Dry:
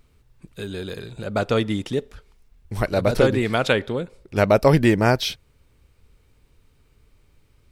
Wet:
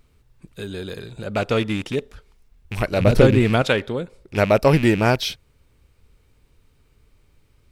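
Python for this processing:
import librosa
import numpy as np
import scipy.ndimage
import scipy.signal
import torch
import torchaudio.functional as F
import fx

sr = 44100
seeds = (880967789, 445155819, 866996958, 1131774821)

y = fx.rattle_buzz(x, sr, strikes_db=-26.0, level_db=-20.0)
y = fx.low_shelf(y, sr, hz=320.0, db=9.0, at=(3.0, 3.62))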